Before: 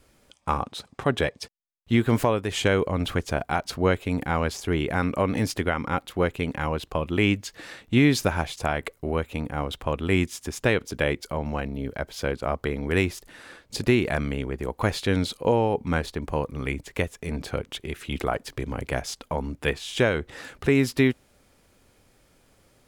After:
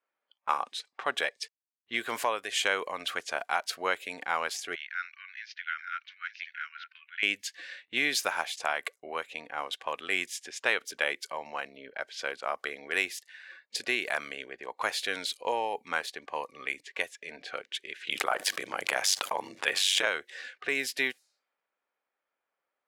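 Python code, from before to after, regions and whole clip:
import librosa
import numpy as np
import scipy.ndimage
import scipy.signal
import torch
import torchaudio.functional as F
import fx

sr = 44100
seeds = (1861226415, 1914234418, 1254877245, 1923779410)

y = fx.chain(x, sr, fx.cheby1_bandpass(low_hz=1400.0, high_hz=6100.0, order=4),
    fx.high_shelf(hz=2100.0, db=-8.5),
    fx.echo_single(ms=881, db=-10.5), at=(4.75, 7.23))
y = fx.chain(y, sr, fx.ring_mod(carrier_hz=48.0),
    fx.env_flatten(amount_pct=70), at=(18.07, 20.07))
y = scipy.signal.sosfilt(scipy.signal.butter(2, 890.0, 'highpass', fs=sr, output='sos'), y)
y = fx.env_lowpass(y, sr, base_hz=1700.0, full_db=-29.5)
y = fx.noise_reduce_blind(y, sr, reduce_db=16)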